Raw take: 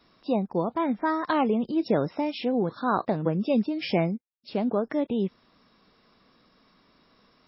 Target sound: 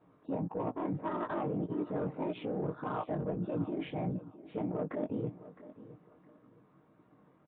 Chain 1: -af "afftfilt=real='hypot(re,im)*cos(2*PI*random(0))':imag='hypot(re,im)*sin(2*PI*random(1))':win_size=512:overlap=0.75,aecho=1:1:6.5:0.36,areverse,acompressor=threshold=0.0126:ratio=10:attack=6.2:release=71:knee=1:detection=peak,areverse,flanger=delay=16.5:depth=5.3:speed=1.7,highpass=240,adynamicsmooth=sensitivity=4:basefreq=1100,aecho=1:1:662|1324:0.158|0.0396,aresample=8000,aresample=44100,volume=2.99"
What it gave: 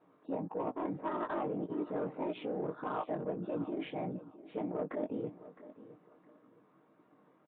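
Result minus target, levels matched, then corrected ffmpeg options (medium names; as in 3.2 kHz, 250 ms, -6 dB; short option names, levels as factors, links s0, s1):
125 Hz band -6.0 dB
-af "afftfilt=real='hypot(re,im)*cos(2*PI*random(0))':imag='hypot(re,im)*sin(2*PI*random(1))':win_size=512:overlap=0.75,aecho=1:1:6.5:0.36,areverse,acompressor=threshold=0.0126:ratio=10:attack=6.2:release=71:knee=1:detection=peak,areverse,flanger=delay=16.5:depth=5.3:speed=1.7,highpass=91,adynamicsmooth=sensitivity=4:basefreq=1100,aecho=1:1:662|1324:0.158|0.0396,aresample=8000,aresample=44100,volume=2.99"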